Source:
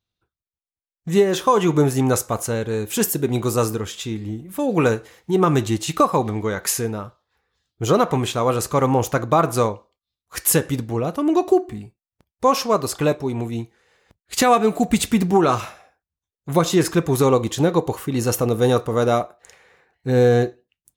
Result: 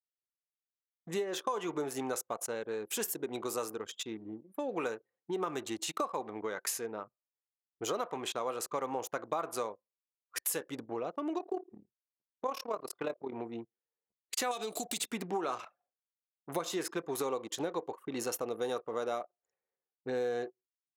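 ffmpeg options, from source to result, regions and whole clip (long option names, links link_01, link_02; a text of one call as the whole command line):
ffmpeg -i in.wav -filter_complex "[0:a]asettb=1/sr,asplit=3[link_01][link_02][link_03];[link_01]atrim=end=11.384[link_04];[link_02]atrim=start=11.38:end=13.33,asetpts=PTS-STARTPTS,afade=type=in:duration=0.004:curve=qsin,afade=type=out:start_time=1.946:duration=0.004:curve=qsin,equalizer=frequency=7200:width_type=o:width=0.98:gain=-6,tremolo=f=36:d=0.667[link_05];[link_03]atrim=start=13.326[link_06];[link_04][link_05]acrossfade=duration=0.004:curve1=hsin:curve2=qsin[link_07];[link_07][link_06]acrossfade=duration=0.004:curve1=qsin:curve2=hsin,asettb=1/sr,asplit=3[link_08][link_09][link_10];[link_08]atrim=end=14.514[link_11];[link_09]atrim=start=14.51:end=14.97,asetpts=PTS-STARTPTS,afade=type=in:duration=0.004:curve=qsin,afade=type=out:start_time=0.456:duration=0.004:curve=qsin,highshelf=frequency=2700:width_type=q:width=1.5:gain=12.5,acompressor=threshold=-17dB:ratio=6:attack=3.2:release=140:knee=1:detection=peak[link_12];[link_10]atrim=start=14.966[link_13];[link_11][link_12]acrossfade=duration=0.004:curve1=hsin:curve2=qsin[link_14];[link_14][link_13]acrossfade=duration=0.004:curve1=qsin:curve2=hsin,anlmdn=39.8,highpass=390,acompressor=threshold=-29dB:ratio=3,volume=-5.5dB" out.wav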